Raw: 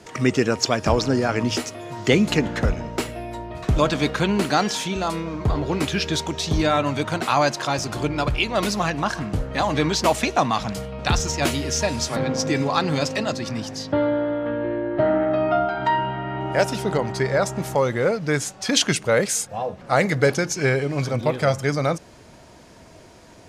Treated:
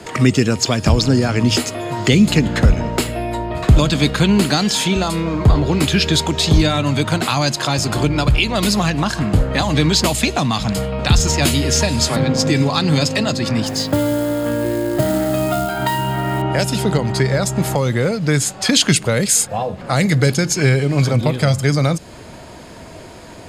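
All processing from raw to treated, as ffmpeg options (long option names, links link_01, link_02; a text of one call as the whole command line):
ffmpeg -i in.wav -filter_complex "[0:a]asettb=1/sr,asplit=3[link_01][link_02][link_03];[link_01]atrim=end=13.664[link_04];[link_02]atrim=start=13.66:end=16.42,asetpts=PTS-STARTPTS,afade=type=in:duration=0.004:curve=qsin,afade=type=out:start_time=2.756:duration=0.004:curve=qsin,highshelf=frequency=8700:gain=8.5,acrusher=bits=5:mode=log:mix=0:aa=0.000001[link_05];[link_03]atrim=start=16.416[link_06];[link_04][link_05]acrossfade=duration=0.004:curve1=hsin:curve2=qsin[link_07];[link_07][link_06]acrossfade=duration=0.004:curve1=qsin:curve2=hsin,bandreject=frequency=5800:width=6.1,acrossover=split=240|3000[link_08][link_09][link_10];[link_09]acompressor=threshold=-30dB:ratio=6[link_11];[link_08][link_11][link_10]amix=inputs=3:normalize=0,alimiter=level_in=11.5dB:limit=-1dB:release=50:level=0:latency=1,volume=-1dB" out.wav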